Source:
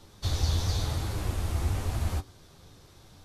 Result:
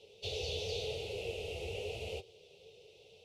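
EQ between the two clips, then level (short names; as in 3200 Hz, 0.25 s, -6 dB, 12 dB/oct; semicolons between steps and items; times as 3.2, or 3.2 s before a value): double band-pass 1100 Hz, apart 2.6 oct; fixed phaser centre 690 Hz, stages 4; +13.5 dB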